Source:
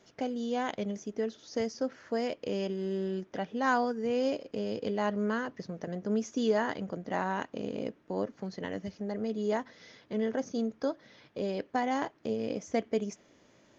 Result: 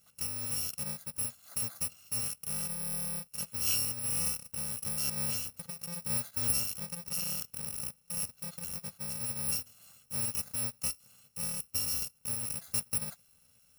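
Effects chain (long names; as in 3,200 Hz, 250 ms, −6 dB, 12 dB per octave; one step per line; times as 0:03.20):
samples in bit-reversed order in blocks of 128 samples
level −3 dB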